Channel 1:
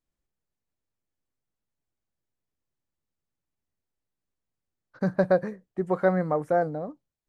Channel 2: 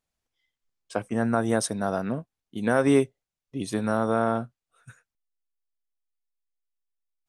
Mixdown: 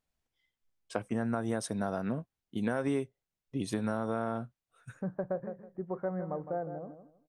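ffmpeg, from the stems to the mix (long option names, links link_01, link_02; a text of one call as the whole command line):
ffmpeg -i stem1.wav -i stem2.wav -filter_complex "[0:a]lowpass=1200,volume=-10.5dB,asplit=2[link_01][link_02];[link_02]volume=-10.5dB[link_03];[1:a]bandreject=frequency=1200:width=29,volume=-1.5dB[link_04];[link_03]aecho=0:1:160|320|480|640:1|0.23|0.0529|0.0122[link_05];[link_01][link_04][link_05]amix=inputs=3:normalize=0,bass=frequency=250:gain=2,treble=frequency=4000:gain=-3,acompressor=threshold=-29dB:ratio=4" out.wav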